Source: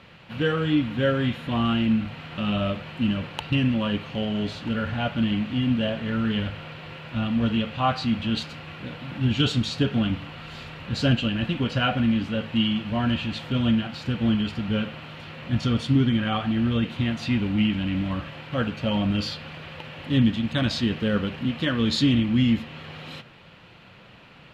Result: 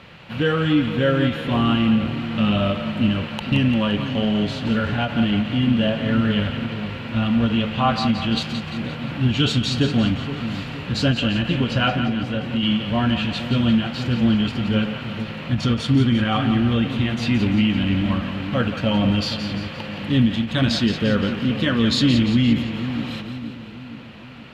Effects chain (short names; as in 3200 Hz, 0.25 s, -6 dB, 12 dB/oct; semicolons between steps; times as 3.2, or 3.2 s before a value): in parallel at -1.5 dB: limiter -18 dBFS, peak gain reduction 10 dB; 11.92–12.63 on the sum: compressor 3:1, threshold -22 dBFS, peak gain reduction 6.5 dB; split-band echo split 510 Hz, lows 0.47 s, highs 0.173 s, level -9 dB; ending taper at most 190 dB/s